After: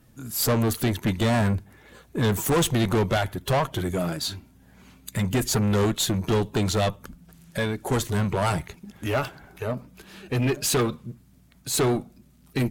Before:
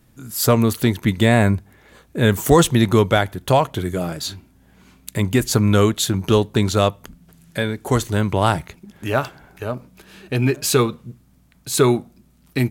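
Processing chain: coarse spectral quantiser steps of 15 dB; valve stage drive 18 dB, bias 0.25

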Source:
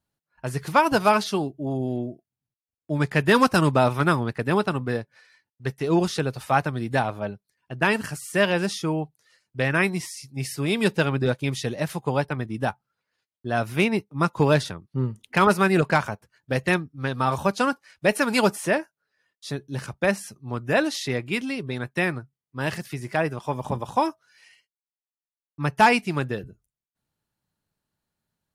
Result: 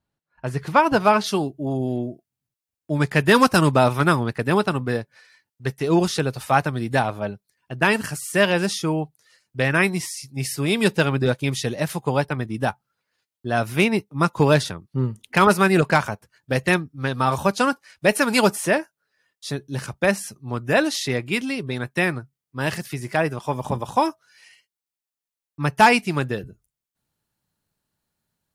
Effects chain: treble shelf 5.2 kHz -10.5 dB, from 1.24 s +4 dB; trim +2.5 dB

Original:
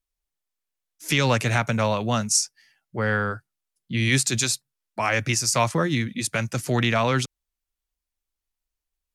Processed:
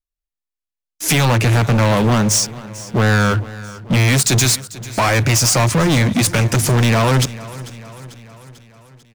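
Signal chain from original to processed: 1.25–3.94 s: treble shelf 3.9 kHz -9.5 dB; compression, threshold -22 dBFS, peak gain reduction 7 dB; bass shelf 160 Hz +8.5 dB; hum notches 50/100/150 Hz; waveshaping leveller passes 5; feedback delay 444 ms, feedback 57%, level -18 dB

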